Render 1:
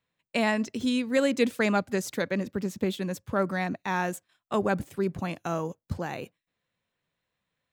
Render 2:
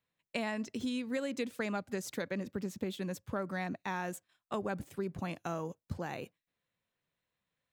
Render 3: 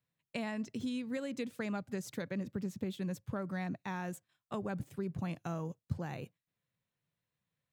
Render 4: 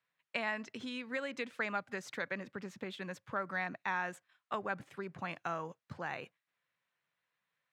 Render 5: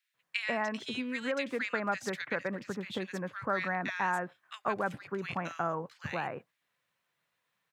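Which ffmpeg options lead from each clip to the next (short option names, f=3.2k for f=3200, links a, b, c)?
-af "acompressor=threshold=-27dB:ratio=6,volume=-5dB"
-af "equalizer=f=130:w=1.2:g=11,volume=-4.5dB"
-af "bandpass=f=1.6k:t=q:w=1:csg=0,volume=9.5dB"
-filter_complex "[0:a]acrossover=split=1800[a][b];[a]adelay=140[c];[c][b]amix=inputs=2:normalize=0,volume=6.5dB"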